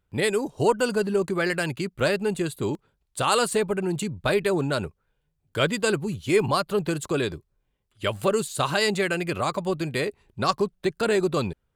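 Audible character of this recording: noise floor -75 dBFS; spectral tilt -4.5 dB/octave

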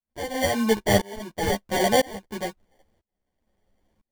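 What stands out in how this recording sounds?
tremolo saw up 1 Hz, depth 100%; aliases and images of a low sample rate 1.3 kHz, jitter 0%; a shimmering, thickened sound

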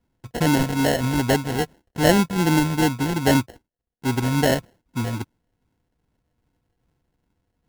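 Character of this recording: a buzz of ramps at a fixed pitch in blocks of 8 samples; phasing stages 12, 2.5 Hz, lowest notch 370–1800 Hz; aliases and images of a low sample rate 1.2 kHz, jitter 0%; MP3

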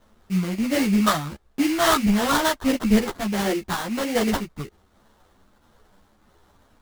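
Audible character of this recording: a quantiser's noise floor 12-bit, dither triangular; phasing stages 4, 1.5 Hz, lowest notch 420–1400 Hz; aliases and images of a low sample rate 2.5 kHz, jitter 20%; a shimmering, thickened sound

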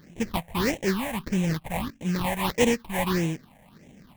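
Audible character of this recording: aliases and images of a low sample rate 1.4 kHz, jitter 20%; phasing stages 6, 1.6 Hz, lowest notch 330–1300 Hz

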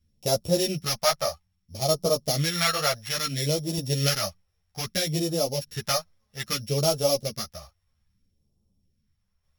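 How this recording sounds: a buzz of ramps at a fixed pitch in blocks of 8 samples; phasing stages 2, 0.61 Hz, lowest notch 260–1800 Hz; tremolo saw down 0.53 Hz, depth 45%; a shimmering, thickened sound

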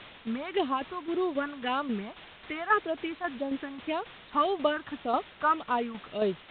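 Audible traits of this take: phasing stages 4, 1.8 Hz, lowest notch 440–2100 Hz; a quantiser's noise floor 8-bit, dither triangular; tremolo saw down 3.7 Hz, depth 55%; µ-law

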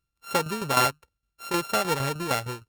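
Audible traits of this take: a buzz of ramps at a fixed pitch in blocks of 32 samples; tremolo saw down 6.5 Hz, depth 65%; Opus

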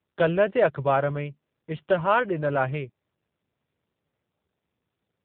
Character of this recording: AMR-NB

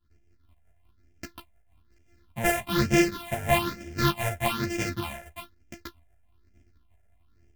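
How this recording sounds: a buzz of ramps at a fixed pitch in blocks of 128 samples; phasing stages 6, 1.1 Hz, lowest notch 290–1100 Hz; tremolo saw up 5.6 Hz, depth 40%; a shimmering, thickened sound

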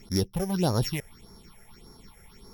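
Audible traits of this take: a buzz of ramps at a fixed pitch in blocks of 8 samples; phasing stages 6, 1.7 Hz, lowest notch 270–2900 Hz; MP3

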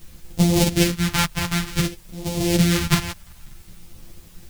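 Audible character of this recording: a buzz of ramps at a fixed pitch in blocks of 256 samples; phasing stages 2, 0.55 Hz, lowest notch 410–1400 Hz; a quantiser's noise floor 10-bit, dither triangular; a shimmering, thickened sound

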